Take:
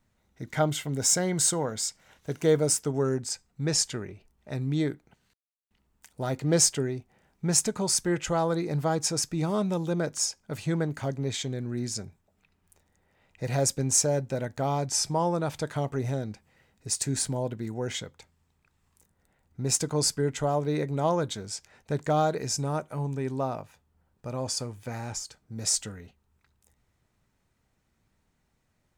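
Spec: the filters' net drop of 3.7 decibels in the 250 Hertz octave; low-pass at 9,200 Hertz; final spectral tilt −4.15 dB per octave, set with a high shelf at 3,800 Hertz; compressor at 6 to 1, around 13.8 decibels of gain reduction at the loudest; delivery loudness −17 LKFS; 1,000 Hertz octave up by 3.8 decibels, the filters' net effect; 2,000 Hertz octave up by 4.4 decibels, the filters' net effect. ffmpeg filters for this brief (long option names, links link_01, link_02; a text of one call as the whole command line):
ffmpeg -i in.wav -af "lowpass=9200,equalizer=frequency=250:width_type=o:gain=-6.5,equalizer=frequency=1000:width_type=o:gain=5,equalizer=frequency=2000:width_type=o:gain=5.5,highshelf=frequency=3800:gain=-7,acompressor=threshold=-33dB:ratio=6,volume=20.5dB" out.wav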